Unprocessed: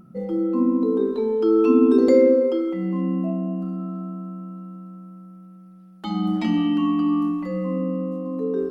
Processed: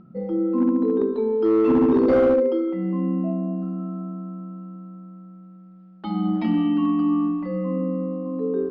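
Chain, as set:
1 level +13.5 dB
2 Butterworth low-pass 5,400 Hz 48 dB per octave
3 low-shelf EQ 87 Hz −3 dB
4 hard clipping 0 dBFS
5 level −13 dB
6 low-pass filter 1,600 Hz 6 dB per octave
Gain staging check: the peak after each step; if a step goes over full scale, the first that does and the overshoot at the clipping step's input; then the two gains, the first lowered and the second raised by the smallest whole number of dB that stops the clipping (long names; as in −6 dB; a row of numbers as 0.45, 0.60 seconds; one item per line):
+9.0, +9.0, +8.5, 0.0, −13.0, −13.0 dBFS
step 1, 8.5 dB
step 1 +4.5 dB, step 5 −4 dB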